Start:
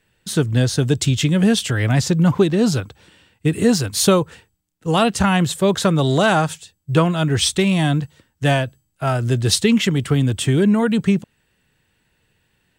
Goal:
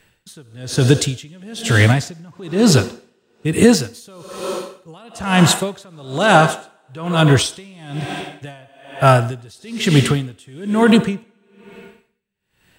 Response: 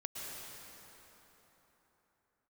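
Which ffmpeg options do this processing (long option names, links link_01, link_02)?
-filter_complex "[0:a]asplit=2[link_01][link_02];[link_02]highpass=350[link_03];[1:a]atrim=start_sample=2205,asetrate=79380,aresample=44100[link_04];[link_03][link_04]afir=irnorm=-1:irlink=0,volume=-1.5dB[link_05];[link_01][link_05]amix=inputs=2:normalize=0,alimiter=level_in=8.5dB:limit=-1dB:release=50:level=0:latency=1,aeval=exprs='val(0)*pow(10,-32*(0.5-0.5*cos(2*PI*1.1*n/s))/20)':channel_layout=same"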